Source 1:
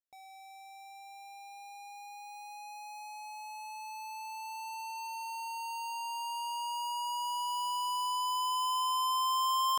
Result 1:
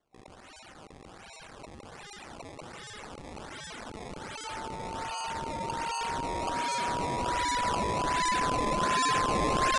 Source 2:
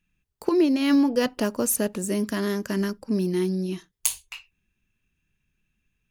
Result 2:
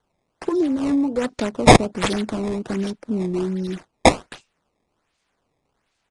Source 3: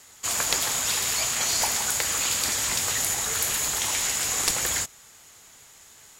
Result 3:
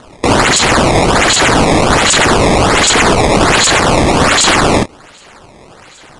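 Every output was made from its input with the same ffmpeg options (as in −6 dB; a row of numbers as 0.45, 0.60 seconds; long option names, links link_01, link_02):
-filter_complex "[0:a]afwtdn=0.0251,asplit=2[link_01][link_02];[link_02]acompressor=threshold=-32dB:ratio=6,volume=3dB[link_03];[link_01][link_03]amix=inputs=2:normalize=0,aexciter=amount=9.4:drive=9.7:freq=5700,acrossover=split=210|1200[link_04][link_05][link_06];[link_06]acrusher=samples=17:mix=1:aa=0.000001:lfo=1:lforange=27.2:lforate=1.3[link_07];[link_04][link_05][link_07]amix=inputs=3:normalize=0,asoftclip=type=tanh:threshold=-1.5dB,aresample=22050,aresample=44100,volume=-2.5dB"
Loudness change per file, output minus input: +4.5, +4.0, +14.5 LU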